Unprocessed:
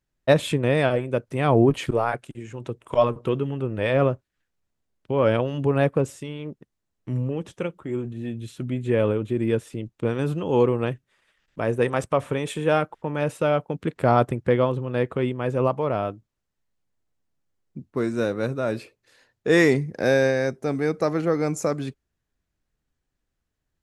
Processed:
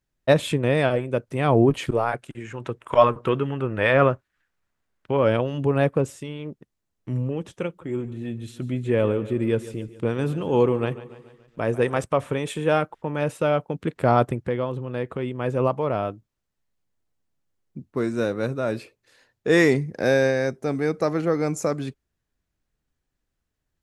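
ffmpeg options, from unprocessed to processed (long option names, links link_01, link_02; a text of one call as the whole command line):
ffmpeg -i in.wav -filter_complex "[0:a]asettb=1/sr,asplit=3[link_01][link_02][link_03];[link_01]atrim=end=2.284[link_04];[link_02]atrim=start=2.28:end=5.17,asetpts=PTS-STARTPTS,afade=type=in:duration=0.004:curve=qsin,afade=type=out:start_time=2.886:duration=0.004:curve=qsin,equalizer=frequency=1500:width=0.78:gain=9.5[link_05];[link_03]atrim=start=5.166[link_06];[link_04][link_05]acrossfade=duration=0.004:curve1=hsin:curve2=qsin[link_07];[link_07][link_06]acrossfade=duration=0.004:curve1=qsin:curve2=hsin,asettb=1/sr,asplit=3[link_08][link_09][link_10];[link_08]atrim=end=7.674[link_11];[link_09]atrim=start=7.67:end=11.98,asetpts=PTS-STARTPTS,afade=type=in:duration=0.004:curve=qsin,afade=type=out:start_time=4.306:duration=0.004:curve=qsin,aecho=1:1:143|286|429|572|715:0.158|0.084|0.0445|0.0236|0.0125,atrim=end_sample=190071[link_12];[link_10]atrim=start=11.976[link_13];[link_11][link_12]acrossfade=duration=0.004:curve1=hsin:curve2=qsin[link_14];[link_14][link_13]acrossfade=duration=0.004:curve1=qsin:curve2=hsin,asettb=1/sr,asplit=3[link_15][link_16][link_17];[link_15]atrim=end=14.384[link_18];[link_16]atrim=start=14.38:end=15.35,asetpts=PTS-STARTPTS,afade=type=in:duration=0.004:curve=qsin,afade=type=out:start_time=0.966:duration=0.004:curve=qsin,acompressor=threshold=-30dB:ratio=1.5:attack=3.2:release=140:knee=1:detection=peak[link_19];[link_17]atrim=start=15.346[link_20];[link_18][link_19]acrossfade=duration=0.004:curve1=hsin:curve2=qsin[link_21];[link_21][link_20]acrossfade=duration=0.004:curve1=qsin:curve2=hsin" out.wav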